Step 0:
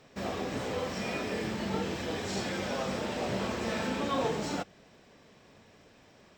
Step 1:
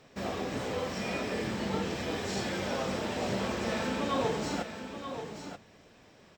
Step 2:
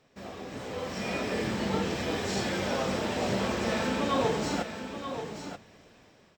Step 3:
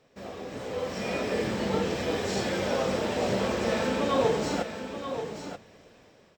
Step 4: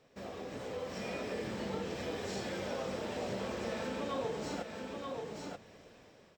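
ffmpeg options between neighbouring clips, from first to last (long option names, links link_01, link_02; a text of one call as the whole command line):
ffmpeg -i in.wav -af "aecho=1:1:932:0.355" out.wav
ffmpeg -i in.wav -af "dynaudnorm=framelen=350:gausssize=5:maxgain=10.5dB,volume=-7.5dB" out.wav
ffmpeg -i in.wav -af "equalizer=frequency=500:width_type=o:width=0.66:gain=5" out.wav
ffmpeg -i in.wav -af "acompressor=threshold=-39dB:ratio=2,volume=-2.5dB" out.wav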